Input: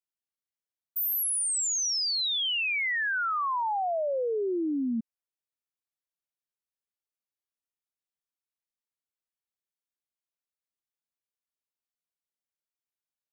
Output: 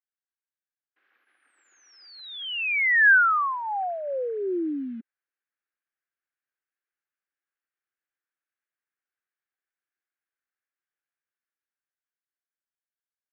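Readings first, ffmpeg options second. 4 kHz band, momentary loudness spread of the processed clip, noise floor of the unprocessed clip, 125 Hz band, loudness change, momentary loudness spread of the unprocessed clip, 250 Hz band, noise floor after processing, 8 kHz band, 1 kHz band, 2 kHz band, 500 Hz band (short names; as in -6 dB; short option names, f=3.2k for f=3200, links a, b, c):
-8.0 dB, 19 LU, under -85 dBFS, n/a, +5.0 dB, 5 LU, -1.0 dB, under -85 dBFS, under -35 dB, +3.5 dB, +9.5 dB, -0.5 dB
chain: -af "dynaudnorm=f=290:g=13:m=9dB,acrusher=bits=8:mode=log:mix=0:aa=0.000001,highpass=f=340:w=0.5412,highpass=f=340:w=1.3066,equalizer=f=440:t=q:w=4:g=-7,equalizer=f=630:t=q:w=4:g=-10,equalizer=f=950:t=q:w=4:g=-10,equalizer=f=1.6k:t=q:w=4:g=8,lowpass=f=2.3k:w=0.5412,lowpass=f=2.3k:w=1.3066,volume=-2dB"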